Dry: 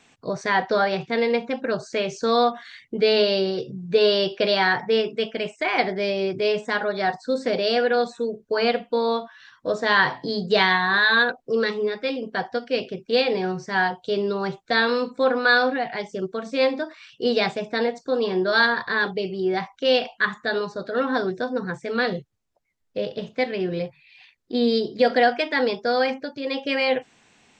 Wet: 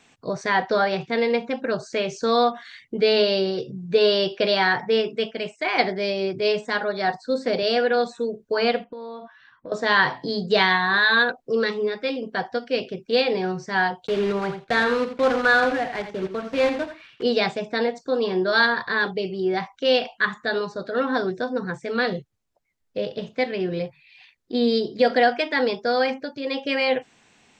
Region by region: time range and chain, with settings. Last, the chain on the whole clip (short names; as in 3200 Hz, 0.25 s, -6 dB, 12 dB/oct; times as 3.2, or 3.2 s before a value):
5.31–7.63 bell 4400 Hz +4 dB 0.27 oct + three-band expander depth 40%
8.84–9.72 low-pass opened by the level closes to 2300 Hz, open at -23.5 dBFS + high shelf 2600 Hz -12 dB + compressor 10:1, threshold -33 dBFS
14.07–17.24 block floating point 3-bit + LPF 3000 Hz + echo 85 ms -10 dB
whole clip: dry